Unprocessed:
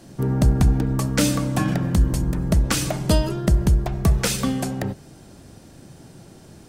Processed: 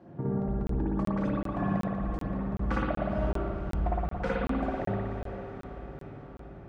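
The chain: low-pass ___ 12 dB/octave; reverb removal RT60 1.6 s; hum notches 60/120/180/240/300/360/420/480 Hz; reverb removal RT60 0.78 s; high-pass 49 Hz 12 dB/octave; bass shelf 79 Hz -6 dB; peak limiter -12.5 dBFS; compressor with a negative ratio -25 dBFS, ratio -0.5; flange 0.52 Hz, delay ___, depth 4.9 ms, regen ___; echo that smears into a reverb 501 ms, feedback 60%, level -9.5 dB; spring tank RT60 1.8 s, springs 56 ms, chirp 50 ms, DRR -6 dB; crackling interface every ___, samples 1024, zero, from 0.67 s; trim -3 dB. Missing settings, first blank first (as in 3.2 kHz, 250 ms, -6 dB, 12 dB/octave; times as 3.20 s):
1.2 kHz, 5.4 ms, +62%, 0.38 s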